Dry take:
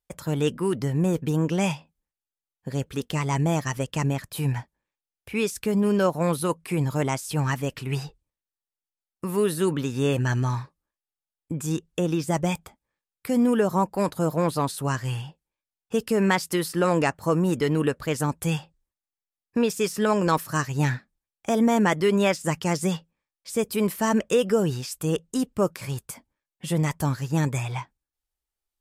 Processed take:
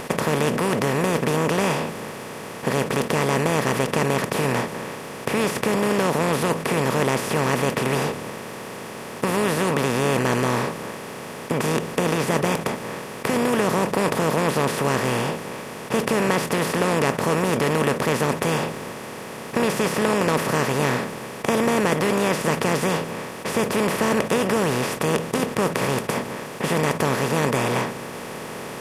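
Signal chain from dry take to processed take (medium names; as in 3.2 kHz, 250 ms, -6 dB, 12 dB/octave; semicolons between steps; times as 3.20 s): spectral levelling over time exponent 0.2; trim -7 dB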